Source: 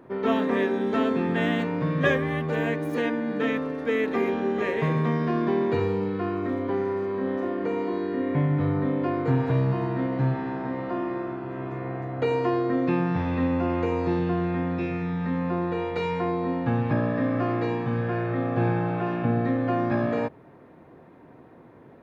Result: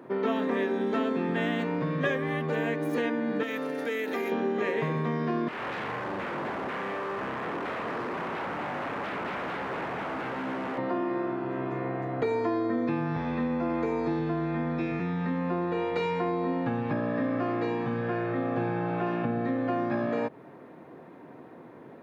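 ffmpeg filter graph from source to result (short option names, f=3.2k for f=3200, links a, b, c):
-filter_complex "[0:a]asettb=1/sr,asplit=3[a][b][c];[a]atrim=end=3.434[d];[b]atrim=start=3.43:end=4.32,asetpts=PTS-STARTPTS,afade=t=in:d=0.004:c=qsin,afade=t=out:st=0.886:d=0.004:c=qsin,aemphasis=mode=production:type=bsi,bandreject=f=1.1k:w=10,acompressor=threshold=-30dB:ratio=3:attack=3.2:release=140:knee=1:detection=peak[e];[c]atrim=start=4.316[f];[d][e]acrossfade=d=0.004:c1=hsin:c2=qsin[g];[g][f]acrossfade=d=0.004:c1=qsin:c2=hsin,asettb=1/sr,asplit=3[h][i][j];[h]atrim=end=5.484[k];[i]atrim=start=5.48:end=10.78,asetpts=PTS-STARTPTS,afade=t=in:d=0.004:c=qsin,afade=t=out:st=5.296:d=0.004:c=qsin,aeval=exprs='0.0299*(abs(mod(val(0)/0.0299+3,4)-2)-1)':c=same,acrossover=split=2700[l][m];[m]acompressor=threshold=-59dB:ratio=4:attack=1:release=60[n];[l][n]amix=inputs=2:normalize=0[o];[j]atrim=start=10.776[p];[k][o]acrossfade=d=0.004:c1=hsin:c2=qsin[q];[q][p]acrossfade=d=0.004:c1=qsin:c2=hsin,asettb=1/sr,asplit=3[r][s][t];[r]atrim=end=12.224[u];[s]atrim=start=12.22:end=15,asetpts=PTS-STARTPTS,afade=t=in:d=0.004:c=qsin,afade=t=out:st=2.776:d=0.004:c=qsin,afreqshift=-19,bandreject=f=2.8k:w=8.2[v];[t]atrim=start=14.996[w];[u][v]acrossfade=d=0.004:c1=hsin:c2=qsin[x];[x][w]acrossfade=d=0.004:c1=qsin:c2=hsin,acompressor=threshold=-29dB:ratio=3,highpass=160,volume=3dB"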